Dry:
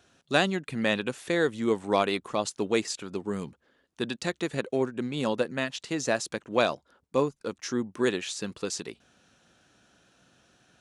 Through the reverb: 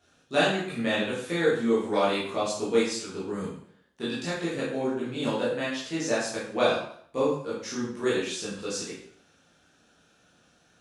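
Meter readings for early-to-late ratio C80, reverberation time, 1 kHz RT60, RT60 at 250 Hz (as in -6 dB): 6.0 dB, 0.55 s, 0.60 s, 0.60 s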